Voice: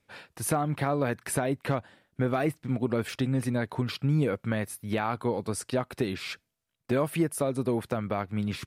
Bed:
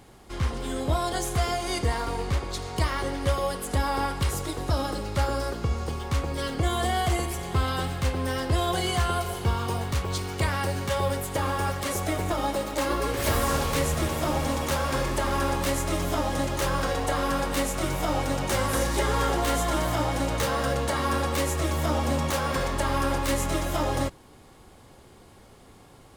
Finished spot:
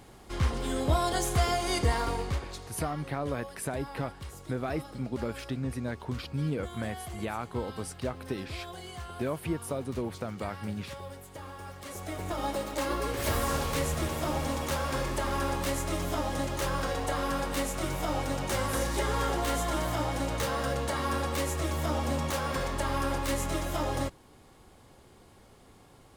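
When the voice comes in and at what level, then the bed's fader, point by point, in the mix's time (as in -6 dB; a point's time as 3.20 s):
2.30 s, -6.0 dB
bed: 2.08 s -0.5 dB
2.96 s -16.5 dB
11.64 s -16.5 dB
12.47 s -4.5 dB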